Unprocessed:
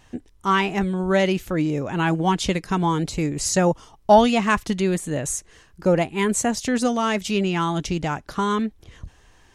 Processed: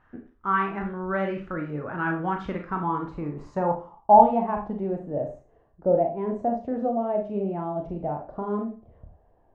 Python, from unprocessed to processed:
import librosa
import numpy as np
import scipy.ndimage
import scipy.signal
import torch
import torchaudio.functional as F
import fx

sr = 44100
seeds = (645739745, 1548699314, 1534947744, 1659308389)

y = fx.filter_sweep_lowpass(x, sr, from_hz=1400.0, to_hz=670.0, start_s=2.39, end_s=5.13, q=4.1)
y = fx.dynamic_eq(y, sr, hz=1200.0, q=2.0, threshold_db=-26.0, ratio=4.0, max_db=-4)
y = fx.rev_schroeder(y, sr, rt60_s=0.35, comb_ms=27, drr_db=2.5)
y = F.gain(torch.from_numpy(y), -10.0).numpy()